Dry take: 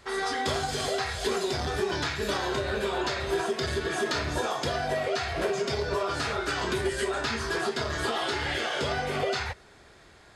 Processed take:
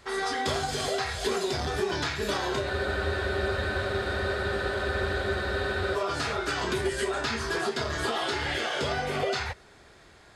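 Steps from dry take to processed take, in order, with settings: spectral freeze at 2.72 s, 3.23 s

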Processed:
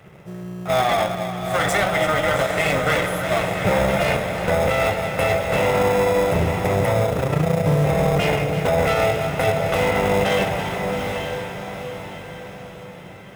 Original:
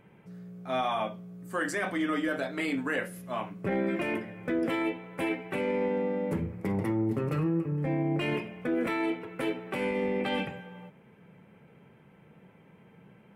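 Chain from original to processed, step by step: comb filter that takes the minimum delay 1.5 ms; echo whose repeats swap between lows and highs 167 ms, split 890 Hz, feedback 81%, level -10 dB; in parallel at -7.5 dB: sample-and-hold 30×; on the sum: high-pass 56 Hz; peaking EQ 4.5 kHz -5 dB 0.34 oct; 7.06–7.66 s: AM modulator 29 Hz, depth 80%; peaking EQ 240 Hz -11 dB 0.35 oct; echo that smears into a reverb 849 ms, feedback 44%, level -7.5 dB; loudness maximiser +21 dB; trim -8.5 dB

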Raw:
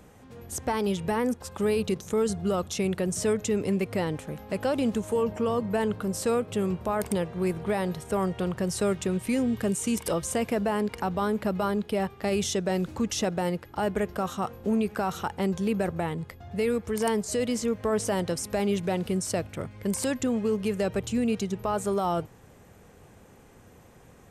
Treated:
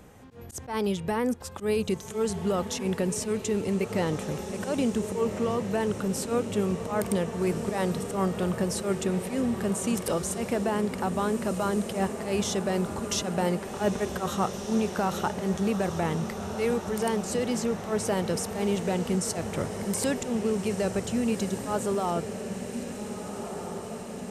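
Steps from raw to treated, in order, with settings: slow attack 103 ms; gain riding within 4 dB 0.5 s; echo that smears into a reverb 1605 ms, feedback 69%, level -9 dB

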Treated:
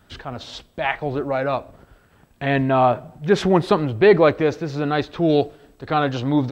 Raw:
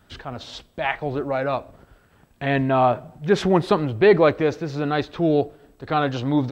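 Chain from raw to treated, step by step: 5.28–5.93 s: peaking EQ 4 kHz +10 dB -> 0 dB 2.3 oct; trim +1.5 dB

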